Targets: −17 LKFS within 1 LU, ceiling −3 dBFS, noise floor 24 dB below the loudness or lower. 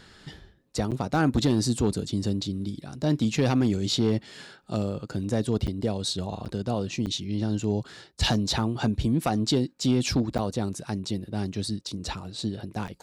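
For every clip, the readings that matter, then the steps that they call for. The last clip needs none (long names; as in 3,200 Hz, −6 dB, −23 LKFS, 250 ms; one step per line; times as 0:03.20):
share of clipped samples 0.4%; peaks flattened at −15.0 dBFS; number of dropouts 6; longest dropout 7.9 ms; integrated loudness −27.5 LKFS; sample peak −15.0 dBFS; target loudness −17.0 LKFS
→ clipped peaks rebuilt −15 dBFS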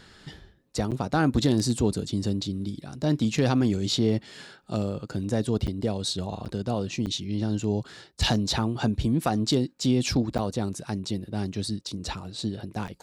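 share of clipped samples 0.0%; number of dropouts 6; longest dropout 7.9 ms
→ repair the gap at 0:00.91/0:05.67/0:06.45/0:07.06/0:10.38/0:12.87, 7.9 ms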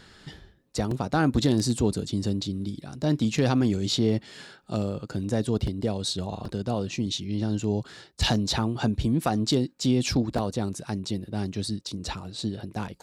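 number of dropouts 0; integrated loudness −27.5 LKFS; sample peak −10.0 dBFS; target loudness −17.0 LKFS
→ level +10.5 dB
brickwall limiter −3 dBFS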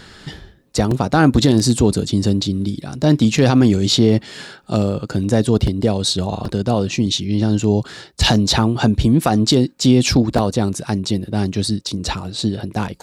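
integrated loudness −17.0 LKFS; sample peak −3.0 dBFS; background noise floor −45 dBFS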